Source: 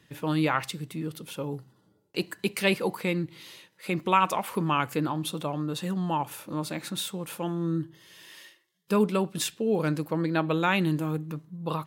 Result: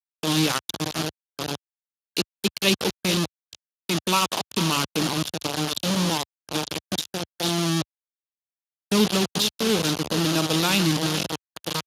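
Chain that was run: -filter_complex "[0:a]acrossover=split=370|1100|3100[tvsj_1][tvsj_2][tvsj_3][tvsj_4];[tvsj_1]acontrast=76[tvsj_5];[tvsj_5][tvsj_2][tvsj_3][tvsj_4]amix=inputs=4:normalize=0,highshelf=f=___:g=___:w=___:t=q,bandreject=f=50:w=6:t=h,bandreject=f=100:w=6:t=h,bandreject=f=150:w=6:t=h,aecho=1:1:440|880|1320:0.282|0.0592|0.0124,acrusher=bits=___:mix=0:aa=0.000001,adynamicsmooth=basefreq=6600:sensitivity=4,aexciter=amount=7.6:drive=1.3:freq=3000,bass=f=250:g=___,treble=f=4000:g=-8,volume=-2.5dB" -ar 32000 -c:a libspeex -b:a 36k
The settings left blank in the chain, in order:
7600, -14, 1.5, 3, -1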